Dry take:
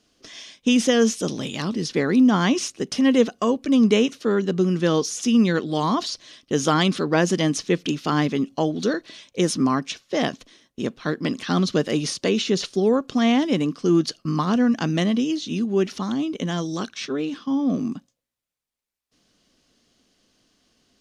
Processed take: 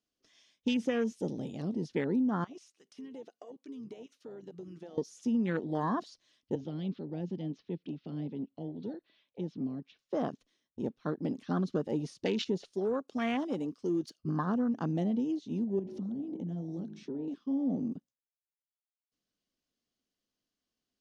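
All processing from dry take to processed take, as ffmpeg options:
-filter_complex "[0:a]asettb=1/sr,asplit=3[a][b][c];[a]atrim=end=2.444[d];[b]atrim=start=2.44:end=4.98,asetpts=PTS-STARTPTS,afade=t=in:d=0.004:c=qsin,afade=t=out:st=2.536:d=0.004:c=qsin,highpass=f=940:p=1,acompressor=threshold=-31dB:ratio=16:attack=3.2:release=140:knee=1:detection=peak[e];[c]atrim=start=4.976[f];[d][e]acrossfade=d=0.004:c1=hsin:c2=qsin[g];[g][f]acrossfade=d=0.004:c1=qsin:c2=hsin,asettb=1/sr,asplit=3[h][i][j];[h]atrim=end=6.554[k];[i]atrim=start=6.55:end=9.99,asetpts=PTS-STARTPTS,afade=t=in:d=0.004:c=qsin,afade=t=out:st=3.436:d=0.004:c=qsin,lowpass=f=3.8k:w=0.5412,lowpass=f=3.8k:w=1.3066,lowshelf=f=170:g=-9,acrossover=split=270|3000[l][m][n];[m]acompressor=threshold=-42dB:ratio=2.5:attack=3.2:release=140:knee=2.83:detection=peak[o];[l][o][n]amix=inputs=3:normalize=0[p];[j]atrim=start=9.986[q];[k][p]acrossfade=d=0.004:c1=hsin:c2=qsin[r];[r][q]acrossfade=d=0.004:c1=qsin:c2=hsin,asettb=1/sr,asplit=3[s][t][u];[s]atrim=end=12.724[v];[t]atrim=start=12.72:end=14.2,asetpts=PTS-STARTPTS,afade=t=in:d=0.004:c=qsin,afade=t=out:st=1.476:d=0.004:c=qsin,highpass=f=380:p=1,highshelf=f=4.4k:g=7,asoftclip=type=hard:threshold=-16dB[w];[u]atrim=start=14.196[x];[v][w]acrossfade=d=0.004:c1=hsin:c2=qsin[y];[y][x]acrossfade=d=0.004:c1=qsin:c2=hsin,asettb=1/sr,asplit=3[z][aa][ab];[z]atrim=end=15.794[ac];[aa]atrim=start=15.79:end=17.28,asetpts=PTS-STARTPTS,afade=t=in:d=0.004:c=qsin,afade=t=out:st=1.486:d=0.004:c=qsin,equalizer=f=190:w=0.62:g=12.5,bandreject=f=53.07:t=h:w=4,bandreject=f=106.14:t=h:w=4,bandreject=f=159.21:t=h:w=4,bandreject=f=212.28:t=h:w=4,bandreject=f=265.35:t=h:w=4,bandreject=f=318.42:t=h:w=4,bandreject=f=371.49:t=h:w=4,bandreject=f=424.56:t=h:w=4,bandreject=f=477.63:t=h:w=4,bandreject=f=530.7:t=h:w=4,bandreject=f=583.77:t=h:w=4,bandreject=f=636.84:t=h:w=4,bandreject=f=689.91:t=h:w=4,bandreject=f=742.98:t=h:w=4,bandreject=f=796.05:t=h:w=4,bandreject=f=849.12:t=h:w=4,bandreject=f=902.19:t=h:w=4,bandreject=f=955.26:t=h:w=4,acompressor=threshold=-27dB:ratio=6:attack=3.2:release=140:knee=1:detection=peak[ad];[ab]atrim=start=17.276[ae];[ac][ad]acrossfade=d=0.004:c1=hsin:c2=qsin[af];[af][ae]acrossfade=d=0.004:c1=qsin:c2=hsin,afwtdn=0.0398,acompressor=threshold=-18dB:ratio=6,volume=-8dB"

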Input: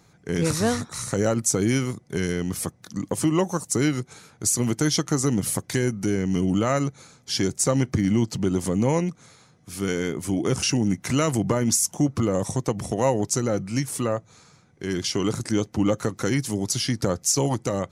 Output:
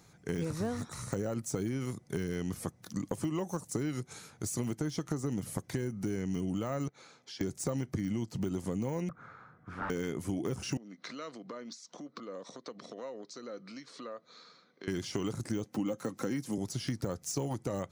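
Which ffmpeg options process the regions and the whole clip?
-filter_complex "[0:a]asettb=1/sr,asplit=3[a][b][c];[a]atrim=end=6.884[d];[b]atrim=start=6.88:end=7.41,asetpts=PTS-STARTPTS,afade=t=in:d=0.004:c=qsin,afade=t=out:st=0.526:d=0.004:c=qsin,acrossover=split=270 5100:gain=0.2 1 0.112[e][f][g];[e][f][g]amix=inputs=3:normalize=0,acompressor=threshold=-47dB:ratio=2.5:attack=3.2:release=140:knee=1:detection=peak,highpass=88[h];[c]atrim=start=7.406[i];[d][h]acrossfade=d=0.004:c1=hsin:c2=qsin[j];[j][i]acrossfade=d=0.004:c1=qsin:c2=hsin,asettb=1/sr,asplit=3[k][l][m];[k]atrim=end=9.094[n];[l]atrim=start=9.09:end=9.9,asetpts=PTS-STARTPTS,afade=t=in:d=0.004:c=qsin,afade=t=out:st=0.806:d=0.004:c=qsin,aeval=exprs='0.0282*(abs(mod(val(0)/0.0282+3,4)-2)-1)':c=same,lowpass=f=1.4k:t=q:w=4.6[o];[m]atrim=start=9.896[p];[n][o]acrossfade=d=0.004:c1=hsin:c2=qsin[q];[q][p]acrossfade=d=0.004:c1=qsin:c2=hsin,asettb=1/sr,asplit=3[r][s][t];[r]atrim=end=10.774[u];[s]atrim=start=10.77:end=14.88,asetpts=PTS-STARTPTS,afade=t=in:d=0.004:c=qsin,afade=t=out:st=4.106:d=0.004:c=qsin,acompressor=threshold=-35dB:ratio=5:attack=3.2:release=140:knee=1:detection=peak,highpass=f=240:w=0.5412,highpass=f=240:w=1.3066,equalizer=f=340:t=q:w=4:g=-5,equalizer=f=500:t=q:w=4:g=3,equalizer=f=830:t=q:w=4:g=-9,equalizer=f=1.2k:t=q:w=4:g=5,equalizer=f=2.7k:t=q:w=4:g=-5,equalizer=f=4.1k:t=q:w=4:g=9,lowpass=f=4.7k:w=0.5412,lowpass=f=4.7k:w=1.3066[v];[t]atrim=start=14.876[w];[u][v]acrossfade=d=0.004:c1=hsin:c2=qsin[x];[x][w]acrossfade=d=0.004:c1=qsin:c2=hsin,asettb=1/sr,asplit=3[y][z][aa];[y]atrim=end=15.644[ab];[z]atrim=start=15.64:end=16.58,asetpts=PTS-STARTPTS,afade=t=in:d=0.004:c=qsin,afade=t=out:st=0.936:d=0.004:c=qsin,highpass=f=120:w=0.5412,highpass=f=120:w=1.3066,aecho=1:1:3.8:0.35,atrim=end_sample=41454[ac];[aa]atrim=start=16.576[ad];[ab][ac]acrossfade=d=0.004:c1=hsin:c2=qsin[ae];[ae][ad]acrossfade=d=0.004:c1=qsin:c2=hsin,deesser=0.95,highshelf=f=6.4k:g=4.5,acompressor=threshold=-27dB:ratio=6,volume=-3.5dB"

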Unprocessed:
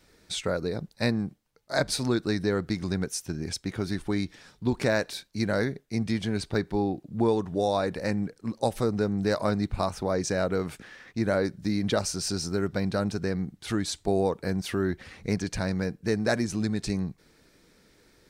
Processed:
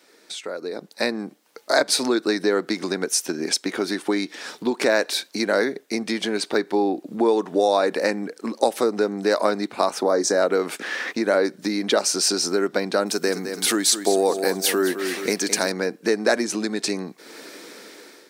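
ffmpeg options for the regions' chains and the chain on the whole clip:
-filter_complex "[0:a]asettb=1/sr,asplit=3[a][b][c];[a]atrim=end=10.014[d];[b]atrim=start=10.01:end=10.42,asetpts=PTS-STARTPTS,afade=t=in:d=0.004:c=qsin,afade=t=out:st=0.406:d=0.004:c=qsin,equalizer=f=2.6k:w=2.5:g=-14,asplit=2[e][f];[f]adelay=25,volume=-12.5dB[g];[e][g]amix=inputs=2:normalize=0,atrim=end_sample=18081[h];[c]atrim=start=10.416[i];[d][h]acrossfade=d=0.004:c1=hsin:c2=qsin[j];[j][i]acrossfade=d=0.004:c1=qsin:c2=hsin,asettb=1/sr,asplit=3[k][l][m];[k]atrim=end=13.064[n];[l]atrim=start=13.06:end=15.72,asetpts=PTS-STARTPTS,afade=t=in:d=0.004:c=qsin,afade=t=out:st=2.656:d=0.004:c=qsin,aemphasis=mode=production:type=50fm,aecho=1:1:212|424|636|848:0.282|0.0986|0.0345|0.0121,atrim=end_sample=117306[o];[m]atrim=start=15.716[p];[n][o]acrossfade=d=0.004:c1=hsin:c2=qsin[q];[q][p]acrossfade=d=0.004:c1=qsin:c2=hsin,acompressor=threshold=-44dB:ratio=2.5,highpass=f=280:w=0.5412,highpass=f=280:w=1.3066,dynaudnorm=f=350:g=5:m=15dB,volume=6.5dB"

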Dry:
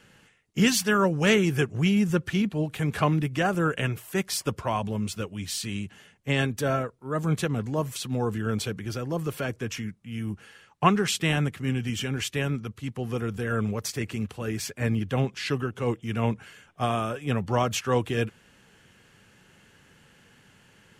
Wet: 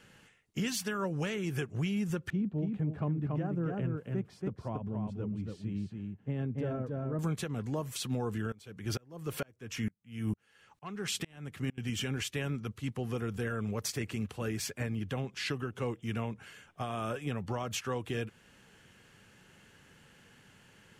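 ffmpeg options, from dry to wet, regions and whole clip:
-filter_complex "[0:a]asettb=1/sr,asplit=3[a][b][c];[a]atrim=end=2.304[d];[b]atrim=start=2.3:end=7.19,asetpts=PTS-STARTPTS,afade=t=in:d=0.004:c=qsin,afade=t=out:st=4.886:d=0.004:c=qsin,bandpass=f=160:t=q:w=0.62,aecho=1:1:281:0.596,atrim=end_sample=215649[e];[c]atrim=start=7.186[f];[d][e]acrossfade=d=0.004:c1=hsin:c2=qsin[g];[g][f]acrossfade=d=0.004:c1=qsin:c2=hsin,asettb=1/sr,asplit=3[h][i][j];[h]atrim=end=8.524[k];[i]atrim=start=8.52:end=11.78,asetpts=PTS-STARTPTS,afade=t=in:d=0.004:c=qsin,afade=t=out:st=3.256:d=0.004:c=qsin,acontrast=76,aeval=exprs='val(0)*pow(10,-33*if(lt(mod(-2.2*n/s,1),2*abs(-2.2)/1000),1-mod(-2.2*n/s,1)/(2*abs(-2.2)/1000),(mod(-2.2*n/s,1)-2*abs(-2.2)/1000)/(1-2*abs(-2.2)/1000))/20)':c=same[l];[j]atrim=start=11.776[m];[k][l]acrossfade=d=0.004:c1=hsin:c2=qsin[n];[n][m]acrossfade=d=0.004:c1=qsin:c2=hsin,acompressor=threshold=-25dB:ratio=6,alimiter=limit=-21.5dB:level=0:latency=1:release=324,volume=-2.5dB"

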